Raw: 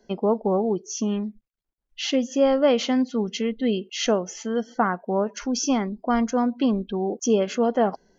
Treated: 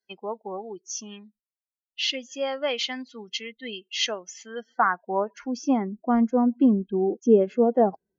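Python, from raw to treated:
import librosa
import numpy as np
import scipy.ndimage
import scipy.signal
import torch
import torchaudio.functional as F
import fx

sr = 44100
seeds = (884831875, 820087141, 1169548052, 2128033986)

y = fx.bin_expand(x, sr, power=1.5)
y = fx.filter_sweep_bandpass(y, sr, from_hz=3200.0, to_hz=360.0, start_s=4.26, end_s=6.04, q=0.75)
y = F.gain(torch.from_numpy(y), 5.5).numpy()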